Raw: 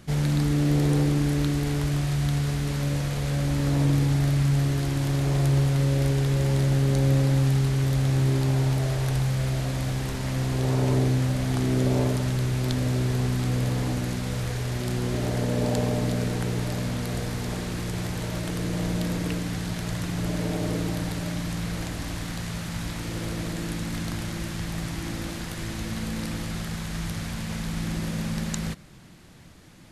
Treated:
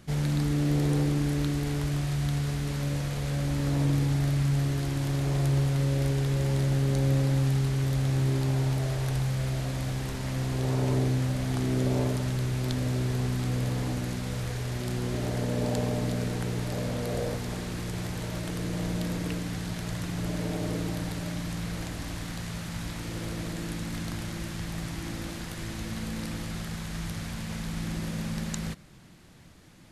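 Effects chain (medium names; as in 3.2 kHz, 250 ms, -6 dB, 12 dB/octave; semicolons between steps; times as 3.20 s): 16.71–17.36 s: peaking EQ 530 Hz +6 dB -> +13.5 dB 0.74 oct; trim -3.5 dB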